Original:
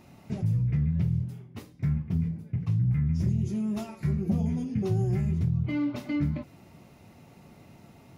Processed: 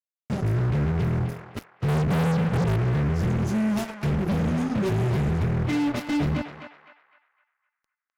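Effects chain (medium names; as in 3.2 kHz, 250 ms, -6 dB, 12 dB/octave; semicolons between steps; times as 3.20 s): 1.88–2.76 s: resonant low shelf 260 Hz +11.5 dB, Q 3; 4.51–5.12 s: high-pass 110 Hz 12 dB/octave; fuzz box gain 33 dB, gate -40 dBFS; band-passed feedback delay 255 ms, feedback 43%, band-pass 1.6 kHz, level -4.5 dB; trim -8 dB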